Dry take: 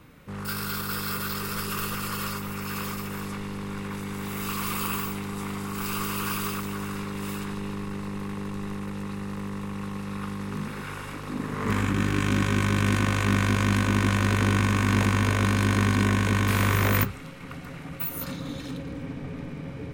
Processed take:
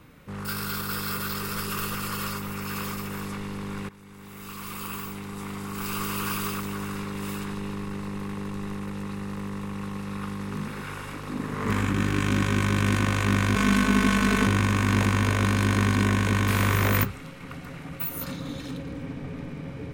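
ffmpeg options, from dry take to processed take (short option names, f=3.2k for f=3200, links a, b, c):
-filter_complex "[0:a]asettb=1/sr,asplit=3[a][b][c];[a]atrim=end=13.554[d];[b]atrim=start=13.55:end=14.47,asetpts=PTS-STARTPTS,afade=t=in:d=0.004:c=qsin,afade=t=out:st=0.916:d=0.004:c=qsin,aecho=1:1:4.6:0.89,atrim=end_sample=40572[e];[c]atrim=start=14.466[f];[d][e]acrossfade=d=0.004:c1=hsin:c2=qsin[g];[g][f]acrossfade=d=0.004:c1=qsin:c2=hsin,asplit=2[h][i];[h]atrim=end=3.89,asetpts=PTS-STARTPTS,afade=t=out:st=3.886:d=0.004:c=hsin:silence=0.125893[j];[i]atrim=start=3.89,asetpts=PTS-STARTPTS,afade=t=in:d=2.26:silence=0.125893[k];[j][k]concat=n=2:v=0:a=1"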